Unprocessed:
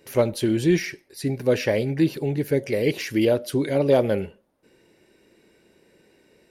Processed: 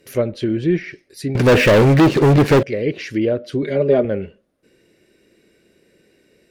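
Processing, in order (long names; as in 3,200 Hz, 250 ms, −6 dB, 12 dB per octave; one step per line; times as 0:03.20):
treble cut that deepens with the level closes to 2,000 Hz, closed at −18 dBFS
parametric band 890 Hz −12 dB 0.4 octaves
0:01.35–0:02.63: leveller curve on the samples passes 5
0:03.62–0:04.05: comb filter 4.9 ms, depth 89%
level +2 dB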